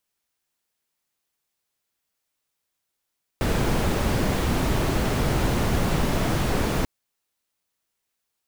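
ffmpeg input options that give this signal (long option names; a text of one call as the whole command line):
ffmpeg -f lavfi -i "anoisesrc=color=brown:amplitude=0.372:duration=3.44:sample_rate=44100:seed=1" out.wav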